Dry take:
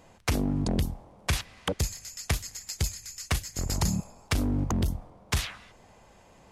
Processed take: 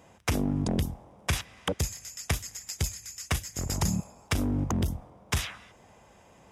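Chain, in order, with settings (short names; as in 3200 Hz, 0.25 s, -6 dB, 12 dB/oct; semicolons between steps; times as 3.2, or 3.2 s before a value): HPF 55 Hz; notch 4300 Hz, Q 6.6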